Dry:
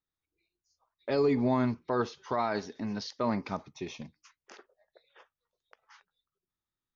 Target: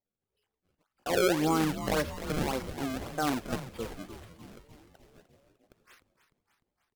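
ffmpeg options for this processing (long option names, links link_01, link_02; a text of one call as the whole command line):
ffmpeg -i in.wav -filter_complex "[0:a]acrusher=samples=34:mix=1:aa=0.000001:lfo=1:lforange=54.4:lforate=1.8,asetrate=55563,aresample=44100,atempo=0.793701,asplit=8[link_01][link_02][link_03][link_04][link_05][link_06][link_07][link_08];[link_02]adelay=301,afreqshift=-120,volume=-11.5dB[link_09];[link_03]adelay=602,afreqshift=-240,volume=-15.9dB[link_10];[link_04]adelay=903,afreqshift=-360,volume=-20.4dB[link_11];[link_05]adelay=1204,afreqshift=-480,volume=-24.8dB[link_12];[link_06]adelay=1505,afreqshift=-600,volume=-29.2dB[link_13];[link_07]adelay=1806,afreqshift=-720,volume=-33.7dB[link_14];[link_08]adelay=2107,afreqshift=-840,volume=-38.1dB[link_15];[link_01][link_09][link_10][link_11][link_12][link_13][link_14][link_15]amix=inputs=8:normalize=0" out.wav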